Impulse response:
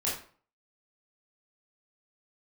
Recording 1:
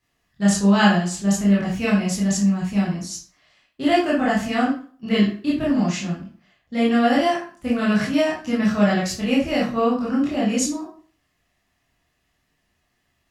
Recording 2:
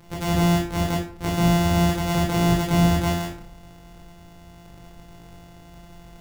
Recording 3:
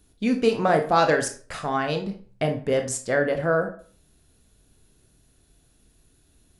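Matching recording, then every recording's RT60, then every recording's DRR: 1; 0.45, 0.45, 0.45 s; -7.0, -2.5, 5.0 dB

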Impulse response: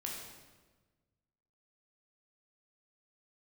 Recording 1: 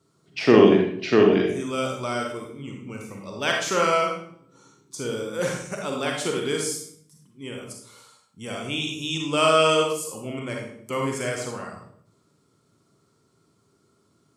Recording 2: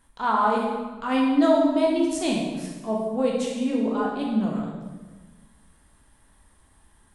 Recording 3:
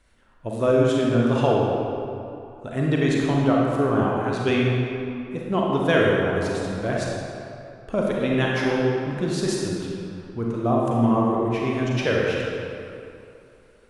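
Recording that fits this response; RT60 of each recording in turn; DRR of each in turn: 2; 0.65, 1.3, 2.8 s; 0.0, -2.0, -3.5 dB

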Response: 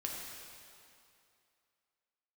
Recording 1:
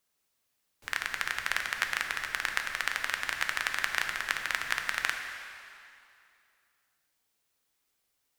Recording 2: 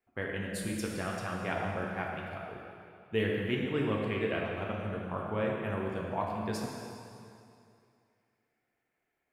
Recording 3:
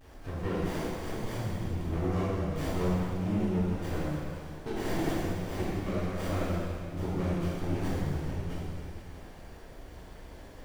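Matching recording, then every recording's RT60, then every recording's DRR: 2; 2.5, 2.5, 2.5 s; 3.5, -2.5, -11.0 dB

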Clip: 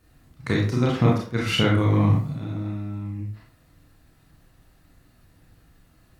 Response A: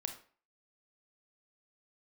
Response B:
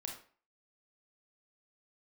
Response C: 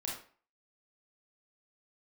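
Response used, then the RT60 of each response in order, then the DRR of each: C; 0.45, 0.45, 0.45 s; 5.5, 0.5, -3.5 dB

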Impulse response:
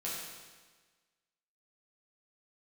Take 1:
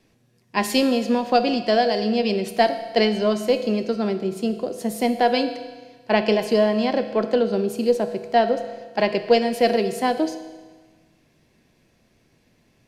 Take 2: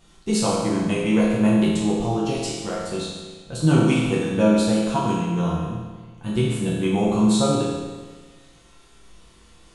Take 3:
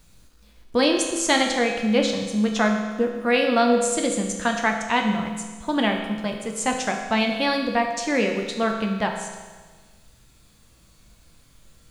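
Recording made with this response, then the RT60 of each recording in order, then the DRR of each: 2; 1.4, 1.4, 1.4 s; 8.5, -7.0, 1.5 dB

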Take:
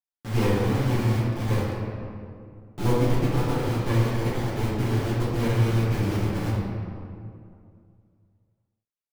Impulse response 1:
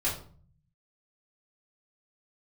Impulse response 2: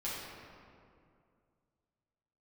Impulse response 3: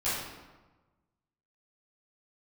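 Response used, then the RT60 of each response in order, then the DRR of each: 2; 0.45, 2.4, 1.2 s; -8.5, -9.0, -14.0 dB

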